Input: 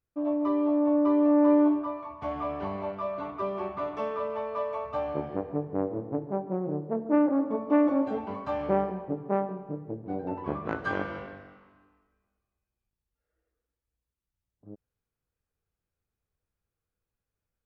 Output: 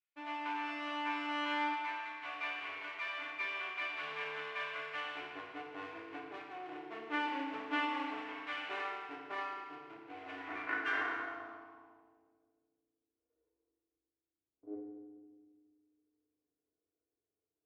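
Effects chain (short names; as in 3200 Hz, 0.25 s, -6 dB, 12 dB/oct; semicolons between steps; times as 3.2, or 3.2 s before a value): minimum comb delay 2.8 ms; FDN reverb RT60 1.5 s, low-frequency decay 1.45×, high-frequency decay 0.85×, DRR -2.5 dB; band-pass sweep 2500 Hz -> 420 Hz, 10.33–13.23; gain +1 dB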